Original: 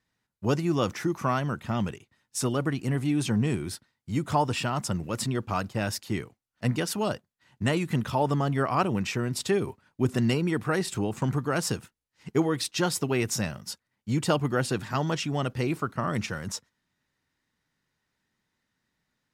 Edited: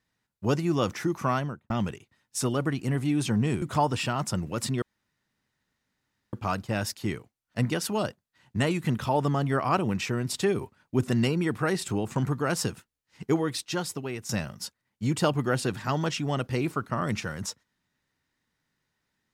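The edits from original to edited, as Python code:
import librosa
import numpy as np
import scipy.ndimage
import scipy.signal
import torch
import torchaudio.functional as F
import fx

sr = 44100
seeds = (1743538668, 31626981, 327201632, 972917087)

y = fx.studio_fade_out(x, sr, start_s=1.35, length_s=0.35)
y = fx.edit(y, sr, fx.cut(start_s=3.62, length_s=0.57),
    fx.insert_room_tone(at_s=5.39, length_s=1.51),
    fx.fade_out_to(start_s=12.29, length_s=1.06, floor_db=-11.5), tone=tone)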